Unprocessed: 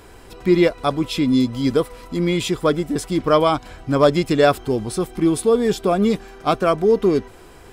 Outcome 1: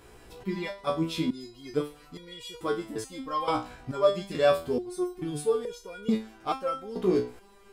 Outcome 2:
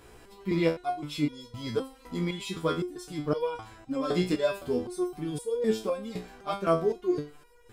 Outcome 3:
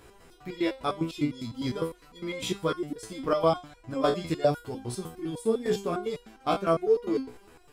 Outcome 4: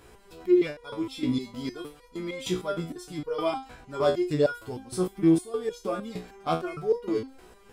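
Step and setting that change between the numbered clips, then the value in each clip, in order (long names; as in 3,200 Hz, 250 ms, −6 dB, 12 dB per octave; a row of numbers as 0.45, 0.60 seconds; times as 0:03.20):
step-sequenced resonator, speed: 2.3, 3.9, 9.9, 6.5 Hertz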